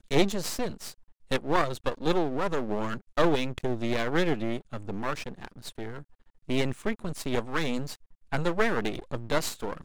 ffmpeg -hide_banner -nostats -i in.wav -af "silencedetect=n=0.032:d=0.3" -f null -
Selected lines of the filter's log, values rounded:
silence_start: 0.90
silence_end: 1.31 | silence_duration: 0.42
silence_start: 5.98
silence_end: 6.49 | silence_duration: 0.51
silence_start: 7.94
silence_end: 8.33 | silence_duration: 0.39